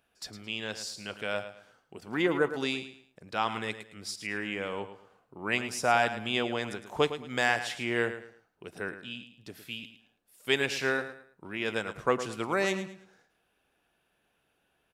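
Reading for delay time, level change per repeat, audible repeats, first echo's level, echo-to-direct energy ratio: 109 ms, -10.5 dB, 3, -11.5 dB, -11.0 dB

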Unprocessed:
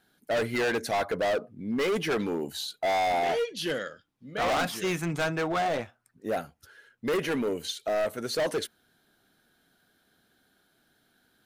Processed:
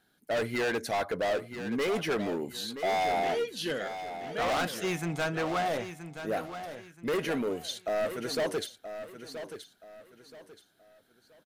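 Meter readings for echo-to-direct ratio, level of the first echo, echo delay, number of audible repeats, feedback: -10.0 dB, -10.5 dB, 976 ms, 3, 31%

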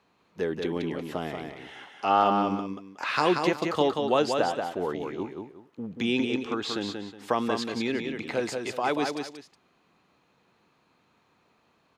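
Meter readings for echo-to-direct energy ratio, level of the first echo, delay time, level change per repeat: -4.5 dB, -5.0 dB, 183 ms, -11.5 dB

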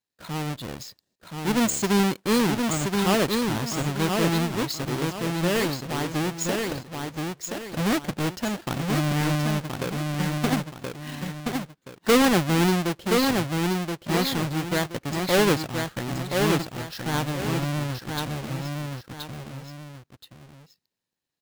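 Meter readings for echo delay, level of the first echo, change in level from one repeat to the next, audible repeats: 1025 ms, -4.0 dB, -9.5 dB, 2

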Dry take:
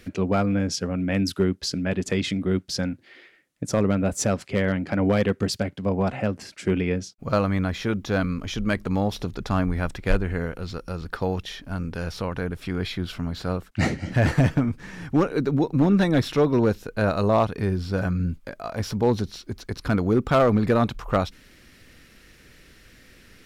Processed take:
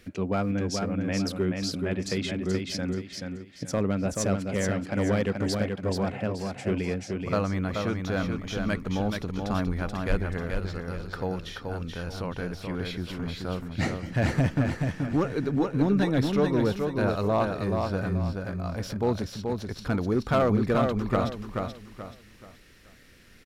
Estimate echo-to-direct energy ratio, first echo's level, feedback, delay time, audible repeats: -4.0 dB, -4.5 dB, 33%, 430 ms, 4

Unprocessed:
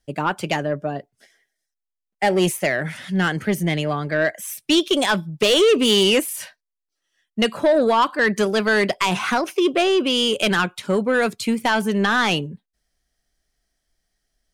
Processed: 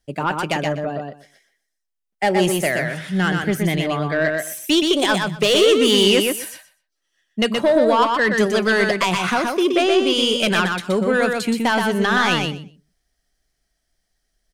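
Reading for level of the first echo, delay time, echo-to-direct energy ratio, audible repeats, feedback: -4.0 dB, 123 ms, -4.0 dB, 2, 16%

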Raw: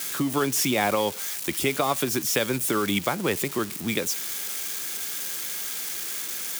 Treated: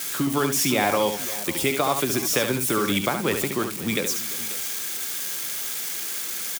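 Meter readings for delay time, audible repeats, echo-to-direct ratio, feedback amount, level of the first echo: 71 ms, 3, -6.5 dB, no regular repeats, -7.0 dB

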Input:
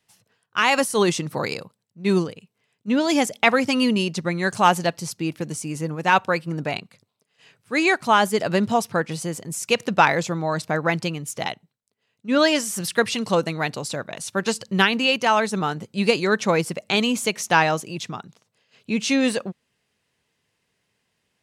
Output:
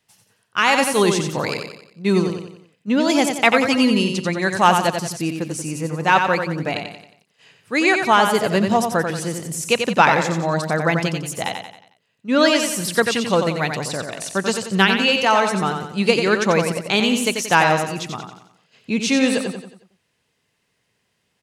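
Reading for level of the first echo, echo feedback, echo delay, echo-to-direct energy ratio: -6.0 dB, 44%, 90 ms, -5.0 dB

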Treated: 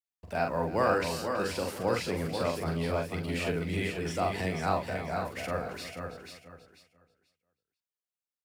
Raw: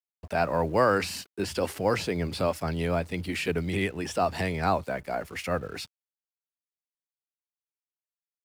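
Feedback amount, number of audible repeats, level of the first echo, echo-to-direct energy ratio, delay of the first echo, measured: no regular repeats, 8, -4.0 dB, -1.0 dB, 43 ms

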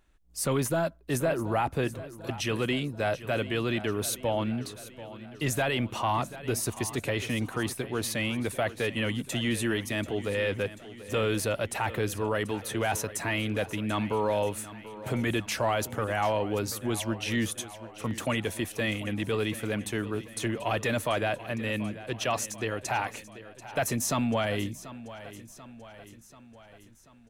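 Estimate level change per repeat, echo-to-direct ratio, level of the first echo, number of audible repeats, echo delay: -5.0 dB, -14.0 dB, -15.5 dB, 4, 737 ms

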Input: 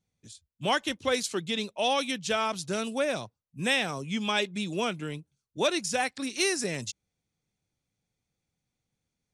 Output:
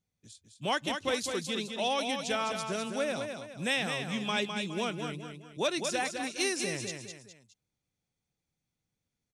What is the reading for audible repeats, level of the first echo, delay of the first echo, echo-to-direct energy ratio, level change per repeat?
3, -6.0 dB, 207 ms, -5.5 dB, -8.0 dB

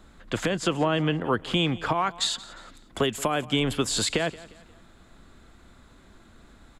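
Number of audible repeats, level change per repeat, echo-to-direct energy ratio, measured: 3, -7.5 dB, -18.5 dB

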